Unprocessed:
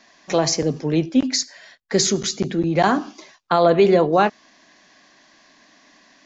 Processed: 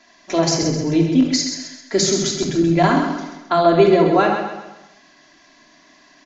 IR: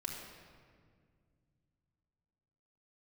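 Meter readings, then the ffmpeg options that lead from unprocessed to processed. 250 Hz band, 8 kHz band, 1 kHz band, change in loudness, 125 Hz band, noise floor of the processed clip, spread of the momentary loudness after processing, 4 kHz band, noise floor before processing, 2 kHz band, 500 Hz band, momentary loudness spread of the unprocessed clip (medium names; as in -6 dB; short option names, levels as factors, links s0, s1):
+4.0 dB, no reading, +1.5 dB, +2.0 dB, +3.5 dB, -52 dBFS, 11 LU, +2.0 dB, -55 dBFS, +2.0 dB, +1.5 dB, 9 LU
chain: -filter_complex "[0:a]aecho=1:1:131|262|393|524|655:0.473|0.203|0.0875|0.0376|0.0162[s0];[1:a]atrim=start_sample=2205,atrim=end_sample=3969[s1];[s0][s1]afir=irnorm=-1:irlink=0,volume=1.26"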